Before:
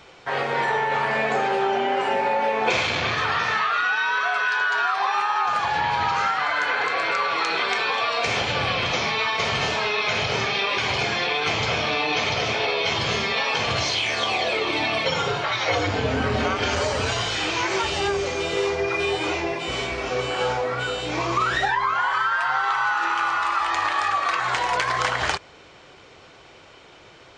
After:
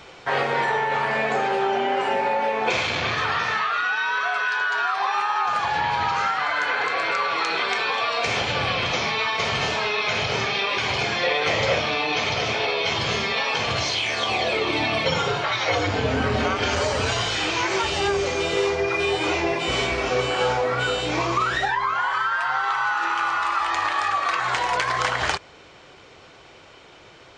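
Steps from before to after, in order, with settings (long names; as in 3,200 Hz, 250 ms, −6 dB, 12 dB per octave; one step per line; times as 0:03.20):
speech leveller within 4 dB 0.5 s
0:11.23–0:11.79: hollow resonant body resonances 550/1,900 Hz, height 14 dB
0:14.29–0:15.18: low-shelf EQ 240 Hz +6.5 dB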